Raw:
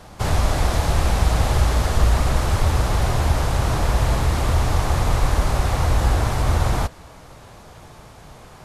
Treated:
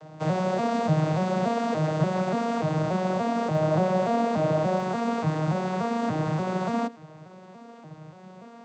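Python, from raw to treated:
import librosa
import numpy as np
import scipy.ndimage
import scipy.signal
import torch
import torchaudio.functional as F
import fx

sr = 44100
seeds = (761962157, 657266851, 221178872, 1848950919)

y = fx.vocoder_arp(x, sr, chord='minor triad', root=51, every_ms=290)
y = fx.peak_eq(y, sr, hz=610.0, db=fx.steps((0.0, 7.5), (3.55, 14.0), (4.8, 3.0)), octaves=0.42)
y = y * 10.0 ** (-1.5 / 20.0)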